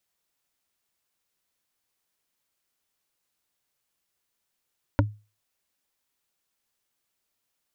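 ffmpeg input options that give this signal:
ffmpeg -f lavfi -i "aevalsrc='0.178*pow(10,-3*t/0.31)*sin(2*PI*105*t)+0.158*pow(10,-3*t/0.092)*sin(2*PI*289.5*t)+0.141*pow(10,-3*t/0.041)*sin(2*PI*567.4*t)+0.126*pow(10,-3*t/0.022)*sin(2*PI*938*t)+0.112*pow(10,-3*t/0.014)*sin(2*PI*1400.7*t)':duration=0.45:sample_rate=44100" out.wav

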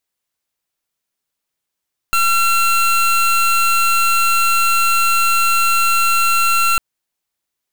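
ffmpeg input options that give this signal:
ffmpeg -f lavfi -i "aevalsrc='0.2*(2*lt(mod(1360*t,1),0.25)-1)':duration=4.65:sample_rate=44100" out.wav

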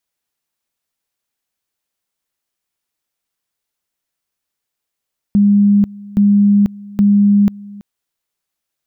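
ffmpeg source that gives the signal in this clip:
ffmpeg -f lavfi -i "aevalsrc='pow(10,(-7-22.5*gte(mod(t,0.82),0.49))/20)*sin(2*PI*203*t)':duration=2.46:sample_rate=44100" out.wav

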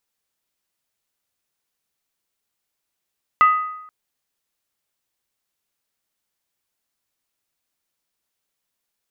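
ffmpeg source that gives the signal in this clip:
ffmpeg -f lavfi -i "aevalsrc='0.398*pow(10,-3*t/0.85)*sin(2*PI*1250*t)+0.112*pow(10,-3*t/0.673)*sin(2*PI*1992.5*t)+0.0316*pow(10,-3*t/0.582)*sin(2*PI*2670*t)+0.00891*pow(10,-3*t/0.561)*sin(2*PI*2870*t)+0.00251*pow(10,-3*t/0.522)*sin(2*PI*3316.2*t)':duration=0.48:sample_rate=44100" out.wav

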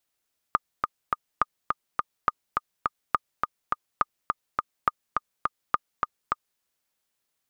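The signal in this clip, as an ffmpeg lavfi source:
ffmpeg -f lavfi -i "aevalsrc='pow(10,(-7-3.5*gte(mod(t,3*60/208),60/208))/20)*sin(2*PI*1220*mod(t,60/208))*exp(-6.91*mod(t,60/208)/0.03)':duration=6.05:sample_rate=44100" out.wav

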